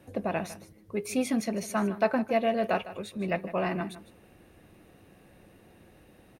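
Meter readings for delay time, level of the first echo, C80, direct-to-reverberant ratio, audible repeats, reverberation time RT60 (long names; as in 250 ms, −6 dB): 155 ms, −15.0 dB, no reverb audible, no reverb audible, 1, no reverb audible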